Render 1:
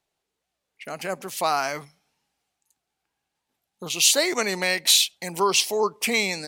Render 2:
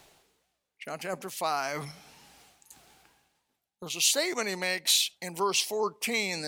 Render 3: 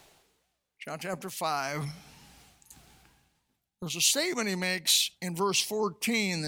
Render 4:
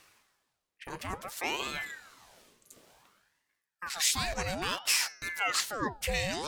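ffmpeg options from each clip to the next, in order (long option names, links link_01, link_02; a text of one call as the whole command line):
ffmpeg -i in.wav -af "agate=range=-8dB:threshold=-44dB:ratio=16:detection=peak,areverse,acompressor=mode=upward:threshold=-22dB:ratio=2.5,areverse,volume=-6.5dB" out.wav
ffmpeg -i in.wav -af "asubboost=boost=4:cutoff=250" out.wav
ffmpeg -i in.wav -af "bandreject=frequency=142.3:width_type=h:width=4,bandreject=frequency=284.6:width_type=h:width=4,bandreject=frequency=426.9:width_type=h:width=4,bandreject=frequency=569.2:width_type=h:width=4,bandreject=frequency=711.5:width_type=h:width=4,bandreject=frequency=853.8:width_type=h:width=4,bandreject=frequency=996.1:width_type=h:width=4,bandreject=frequency=1138.4:width_type=h:width=4,bandreject=frequency=1280.7:width_type=h:width=4,bandreject=frequency=1423:width_type=h:width=4,bandreject=frequency=1565.3:width_type=h:width=4,bandreject=frequency=1707.6:width_type=h:width=4,bandreject=frequency=1849.9:width_type=h:width=4,bandreject=frequency=1992.2:width_type=h:width=4,bandreject=frequency=2134.5:width_type=h:width=4,bandreject=frequency=2276.8:width_type=h:width=4,bandreject=frequency=2419.1:width_type=h:width=4,bandreject=frequency=2561.4:width_type=h:width=4,bandreject=frequency=2703.7:width_type=h:width=4,bandreject=frequency=2846:width_type=h:width=4,bandreject=frequency=2988.3:width_type=h:width=4,bandreject=frequency=3130.6:width_type=h:width=4,bandreject=frequency=3272.9:width_type=h:width=4,bandreject=frequency=3415.2:width_type=h:width=4,bandreject=frequency=3557.5:width_type=h:width=4,bandreject=frequency=3699.8:width_type=h:width=4,bandreject=frequency=3842.1:width_type=h:width=4,bandreject=frequency=3984.4:width_type=h:width=4,bandreject=frequency=4126.7:width_type=h:width=4,bandreject=frequency=4269:width_type=h:width=4,bandreject=frequency=4411.3:width_type=h:width=4,bandreject=frequency=4553.6:width_type=h:width=4,bandreject=frequency=4695.9:width_type=h:width=4,aeval=exprs='val(0)*sin(2*PI*1100*n/s+1100*0.75/0.57*sin(2*PI*0.57*n/s))':channel_layout=same" out.wav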